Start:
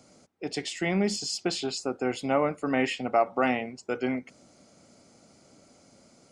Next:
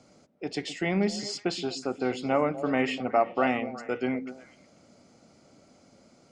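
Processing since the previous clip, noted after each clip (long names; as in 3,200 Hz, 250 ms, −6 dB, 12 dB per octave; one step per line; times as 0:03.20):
high-frequency loss of the air 67 metres
on a send: echo through a band-pass that steps 123 ms, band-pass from 210 Hz, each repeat 1.4 octaves, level −8 dB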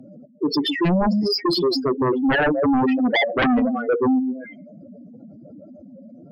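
expanding power law on the bin magnitudes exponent 4
sine wavefolder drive 12 dB, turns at −15 dBFS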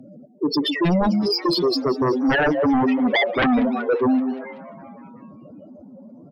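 echo with shifted repeats 190 ms, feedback 65%, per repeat +140 Hz, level −19.5 dB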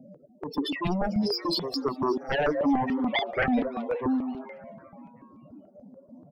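tape wow and flutter 16 cents
step-sequenced phaser 6.9 Hz 330–1,600 Hz
level −3.5 dB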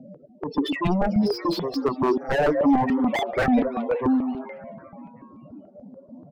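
high-frequency loss of the air 140 metres
slew-rate limiting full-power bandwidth 60 Hz
level +5.5 dB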